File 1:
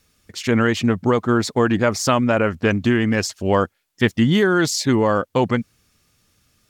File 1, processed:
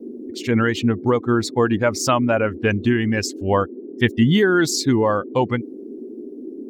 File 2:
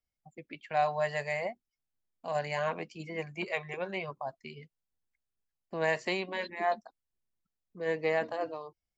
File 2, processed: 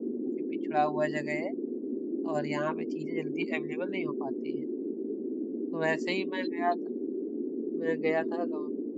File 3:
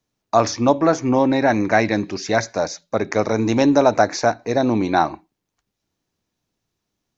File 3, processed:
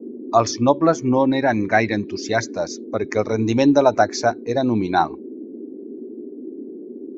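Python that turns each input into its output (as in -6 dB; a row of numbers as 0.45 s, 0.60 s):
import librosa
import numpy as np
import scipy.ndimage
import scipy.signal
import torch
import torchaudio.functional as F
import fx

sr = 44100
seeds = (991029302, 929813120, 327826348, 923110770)

y = fx.bin_expand(x, sr, power=1.5)
y = fx.dmg_noise_band(y, sr, seeds[0], low_hz=230.0, high_hz=410.0, level_db=-36.0)
y = y * 10.0 ** (2.0 / 20.0)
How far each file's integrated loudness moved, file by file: -0.5 LU, +1.5 LU, -0.5 LU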